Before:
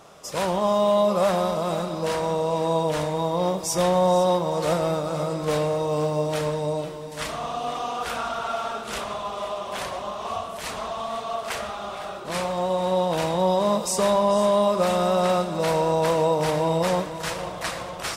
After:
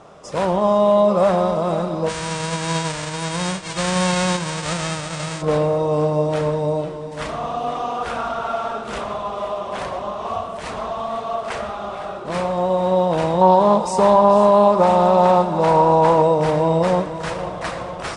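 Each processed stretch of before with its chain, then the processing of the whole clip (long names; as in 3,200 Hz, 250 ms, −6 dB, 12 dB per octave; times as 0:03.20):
0:02.08–0:05.41: spectral envelope flattened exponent 0.1 + linear-phase brick-wall low-pass 9,300 Hz
0:13.41–0:16.22: parametric band 880 Hz +13 dB 0.27 octaves + highs frequency-modulated by the lows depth 0.11 ms
whole clip: Butterworth low-pass 10,000 Hz 72 dB per octave; high-shelf EQ 2,300 Hz −11.5 dB; level +6 dB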